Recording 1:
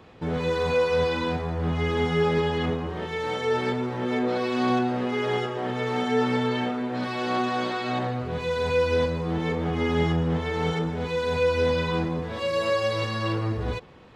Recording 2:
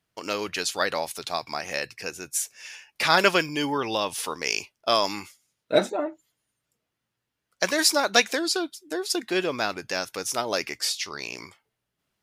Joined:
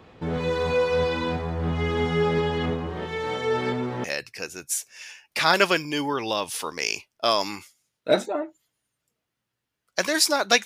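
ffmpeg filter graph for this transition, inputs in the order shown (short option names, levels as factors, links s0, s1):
-filter_complex "[0:a]apad=whole_dur=10.65,atrim=end=10.65,atrim=end=4.042[s0];[1:a]atrim=start=1.678:end=8.29[s1];[s0][s1]acrossfade=d=0.004:c1=hsin:c2=hsin"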